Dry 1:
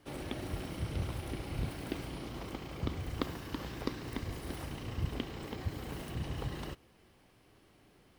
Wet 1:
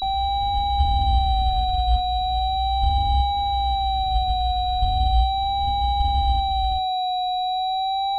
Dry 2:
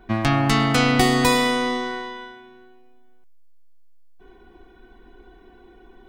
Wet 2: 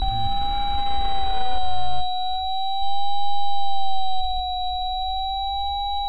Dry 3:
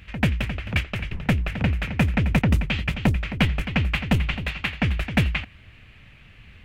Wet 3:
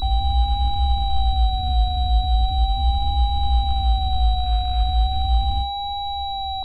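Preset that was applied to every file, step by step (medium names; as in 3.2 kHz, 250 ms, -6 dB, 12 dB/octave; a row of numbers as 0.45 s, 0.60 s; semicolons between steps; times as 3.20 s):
spectrogram pixelated in time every 400 ms; inverse Chebyshev band-stop 180–1000 Hz, stop band 40 dB; tilt EQ -2.5 dB/octave; in parallel at +1.5 dB: level held to a coarse grid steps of 12 dB; on the sum: peak limiter -18.5 dBFS; transient shaper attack +5 dB, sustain -10 dB; feedback comb 60 Hz, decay 0.43 s, harmonics all, mix 80%; whistle 770 Hz -36 dBFS; vibrato 0.38 Hz 79 cents; static phaser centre 510 Hz, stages 6; class-D stage that switches slowly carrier 3.9 kHz; peak normalisation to -9 dBFS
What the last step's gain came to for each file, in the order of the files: +16.0 dB, +13.0 dB, +11.5 dB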